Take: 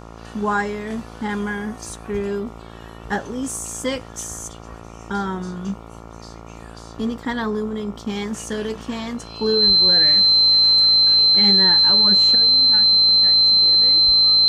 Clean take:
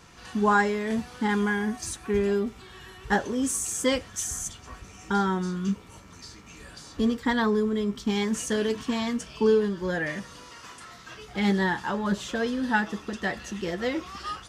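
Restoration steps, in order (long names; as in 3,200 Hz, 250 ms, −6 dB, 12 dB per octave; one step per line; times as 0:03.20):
hum removal 56.3 Hz, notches 25
notch filter 4,100 Hz, Q 30
0:09.66–0:09.78: high-pass filter 140 Hz 24 dB per octave
0:12.35: level correction +11.5 dB
0:14.05–0:14.17: high-pass filter 140 Hz 24 dB per octave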